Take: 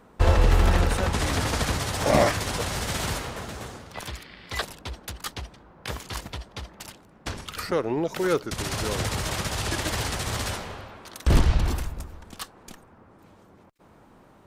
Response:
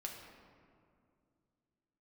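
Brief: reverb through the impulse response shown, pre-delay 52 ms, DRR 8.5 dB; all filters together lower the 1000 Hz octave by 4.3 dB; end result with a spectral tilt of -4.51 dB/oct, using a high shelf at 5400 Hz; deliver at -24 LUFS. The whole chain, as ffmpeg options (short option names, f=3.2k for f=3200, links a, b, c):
-filter_complex "[0:a]equalizer=f=1k:t=o:g=-6,highshelf=f=5.4k:g=5,asplit=2[a][b];[1:a]atrim=start_sample=2205,adelay=52[c];[b][c]afir=irnorm=-1:irlink=0,volume=-6.5dB[d];[a][d]amix=inputs=2:normalize=0,volume=2.5dB"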